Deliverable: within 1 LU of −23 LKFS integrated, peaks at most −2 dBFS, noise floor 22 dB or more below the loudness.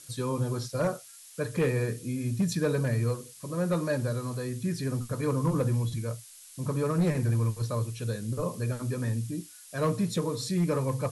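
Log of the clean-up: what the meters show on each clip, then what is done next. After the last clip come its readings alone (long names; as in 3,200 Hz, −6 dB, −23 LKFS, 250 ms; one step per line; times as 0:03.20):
share of clipped samples 0.7%; peaks flattened at −20.0 dBFS; background noise floor −50 dBFS; target noise floor −52 dBFS; integrated loudness −30.0 LKFS; sample peak −20.0 dBFS; target loudness −23.0 LKFS
→ clipped peaks rebuilt −20 dBFS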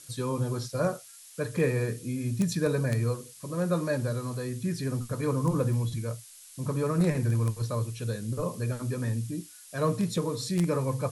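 share of clipped samples 0.0%; background noise floor −50 dBFS; target noise floor −52 dBFS
→ broadband denoise 6 dB, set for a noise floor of −50 dBFS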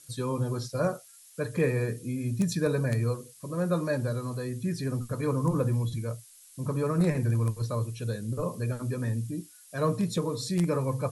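background noise floor −54 dBFS; integrated loudness −30.0 LKFS; sample peak −11.5 dBFS; target loudness −23.0 LKFS
→ level +7 dB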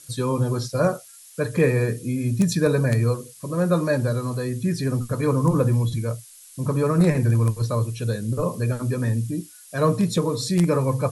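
integrated loudness −23.0 LKFS; sample peak −4.5 dBFS; background noise floor −47 dBFS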